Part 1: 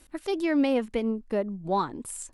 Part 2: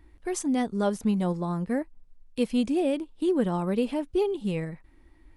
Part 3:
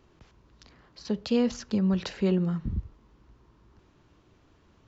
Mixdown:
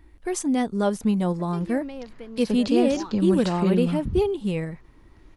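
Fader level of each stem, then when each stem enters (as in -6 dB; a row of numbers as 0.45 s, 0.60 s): -12.5 dB, +3.0 dB, +2.0 dB; 1.25 s, 0.00 s, 1.40 s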